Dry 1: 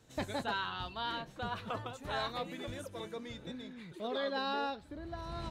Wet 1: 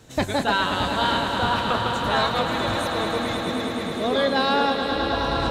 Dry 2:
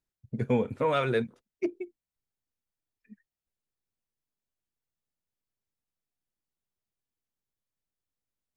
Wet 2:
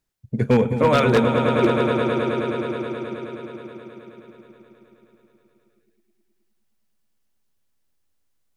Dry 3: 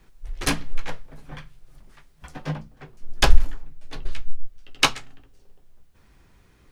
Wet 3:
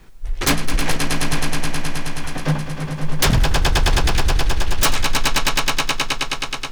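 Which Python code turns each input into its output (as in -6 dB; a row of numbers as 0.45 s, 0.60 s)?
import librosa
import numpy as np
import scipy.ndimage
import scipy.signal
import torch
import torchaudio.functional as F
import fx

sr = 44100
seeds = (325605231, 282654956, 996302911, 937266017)

y = fx.echo_swell(x, sr, ms=106, loudest=5, wet_db=-9.5)
y = 10.0 ** (-18.0 / 20.0) * (np.abs((y / 10.0 ** (-18.0 / 20.0) + 3.0) % 4.0 - 2.0) - 1.0)
y = librosa.util.normalize(y) * 10.0 ** (-9 / 20.0)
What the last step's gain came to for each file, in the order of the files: +13.5 dB, +9.0 dB, +9.0 dB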